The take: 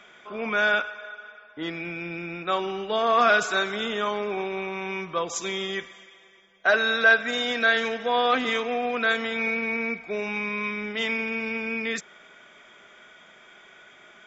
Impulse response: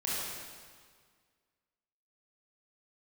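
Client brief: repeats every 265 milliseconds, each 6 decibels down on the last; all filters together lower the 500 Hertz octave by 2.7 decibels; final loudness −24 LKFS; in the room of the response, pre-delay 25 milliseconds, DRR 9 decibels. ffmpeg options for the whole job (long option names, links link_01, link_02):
-filter_complex "[0:a]equalizer=frequency=500:width_type=o:gain=-3.5,aecho=1:1:265|530|795|1060|1325|1590:0.501|0.251|0.125|0.0626|0.0313|0.0157,asplit=2[link_01][link_02];[1:a]atrim=start_sample=2205,adelay=25[link_03];[link_02][link_03]afir=irnorm=-1:irlink=0,volume=-15.5dB[link_04];[link_01][link_04]amix=inputs=2:normalize=0,volume=0.5dB"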